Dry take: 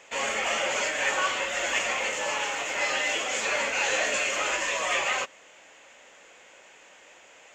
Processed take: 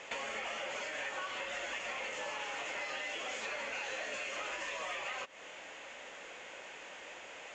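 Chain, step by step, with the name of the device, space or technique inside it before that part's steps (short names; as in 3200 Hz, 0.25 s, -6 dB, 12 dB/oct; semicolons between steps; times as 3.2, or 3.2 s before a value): serial compression, peaks first (compressor, threshold -36 dBFS, peak gain reduction 13.5 dB; compressor 2.5:1, threshold -43 dBFS, peak gain reduction 6.5 dB); LPF 5500 Hz 12 dB/oct; gain +4 dB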